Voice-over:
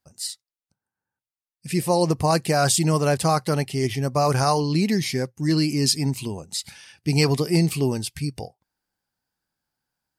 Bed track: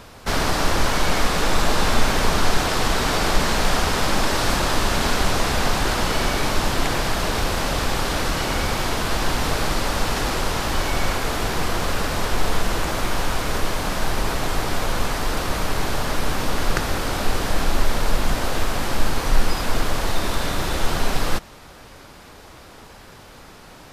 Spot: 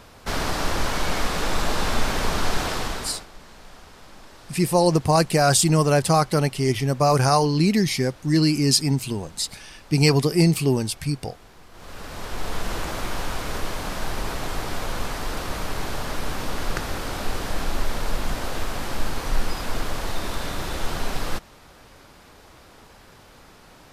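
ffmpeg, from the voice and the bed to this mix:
-filter_complex "[0:a]adelay=2850,volume=1.26[s0];[1:a]volume=6.31,afade=t=out:st=2.68:d=0.58:silence=0.0841395,afade=t=in:st=11.71:d=1.02:silence=0.0944061[s1];[s0][s1]amix=inputs=2:normalize=0"

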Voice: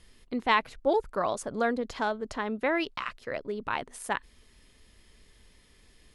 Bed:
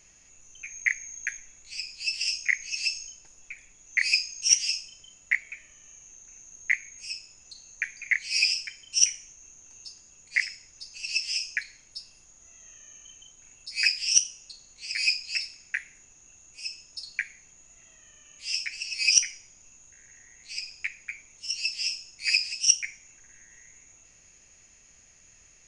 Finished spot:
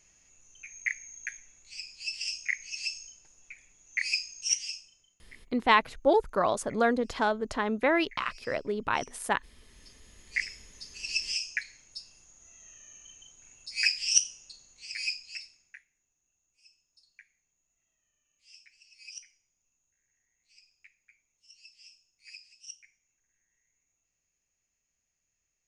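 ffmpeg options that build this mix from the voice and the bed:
-filter_complex "[0:a]adelay=5200,volume=1.33[s0];[1:a]volume=9.44,afade=t=out:st=4.38:d=0.89:silence=0.0794328,afade=t=in:st=9.61:d=1.08:silence=0.0530884,afade=t=out:st=14.27:d=1.59:silence=0.0749894[s1];[s0][s1]amix=inputs=2:normalize=0"

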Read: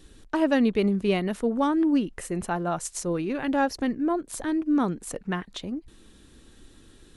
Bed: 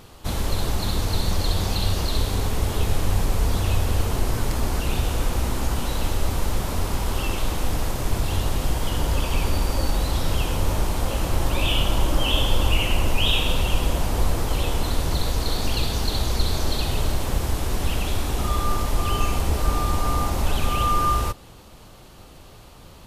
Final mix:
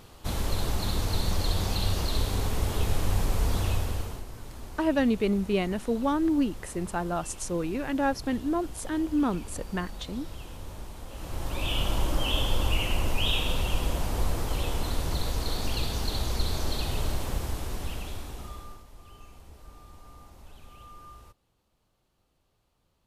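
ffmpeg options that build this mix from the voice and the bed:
-filter_complex "[0:a]adelay=4450,volume=0.75[s0];[1:a]volume=2.51,afade=t=out:st=3.63:d=0.62:silence=0.199526,afade=t=in:st=11.09:d=0.78:silence=0.237137,afade=t=out:st=17.15:d=1.69:silence=0.0841395[s1];[s0][s1]amix=inputs=2:normalize=0"

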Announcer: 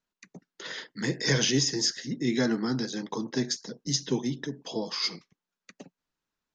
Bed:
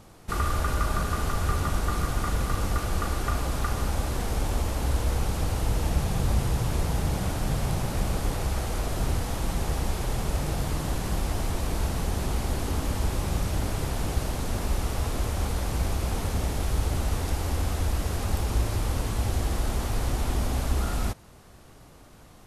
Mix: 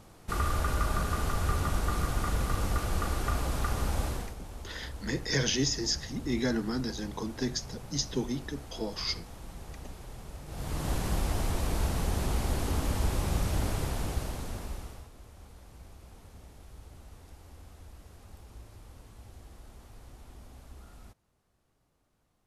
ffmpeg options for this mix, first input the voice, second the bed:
-filter_complex "[0:a]adelay=4050,volume=0.668[s0];[1:a]volume=3.76,afade=t=out:st=4.05:d=0.3:silence=0.211349,afade=t=in:st=10.47:d=0.45:silence=0.188365,afade=t=out:st=13.67:d=1.42:silence=0.0841395[s1];[s0][s1]amix=inputs=2:normalize=0"

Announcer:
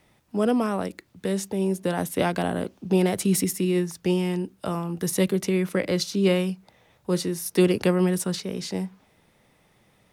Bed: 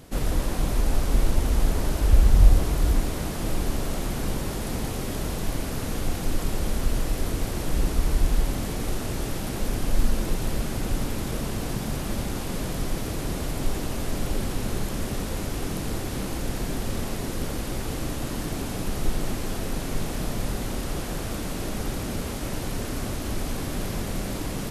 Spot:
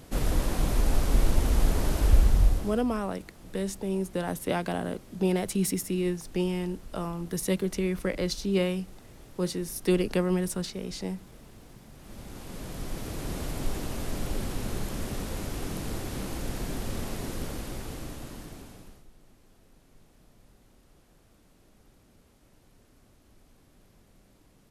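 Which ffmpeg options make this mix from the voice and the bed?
-filter_complex "[0:a]adelay=2300,volume=0.562[s0];[1:a]volume=5.96,afade=t=out:st=2.06:d=0.78:silence=0.1,afade=t=in:st=11.95:d=1.44:silence=0.141254,afade=t=out:st=17.28:d=1.77:silence=0.0501187[s1];[s0][s1]amix=inputs=2:normalize=0"

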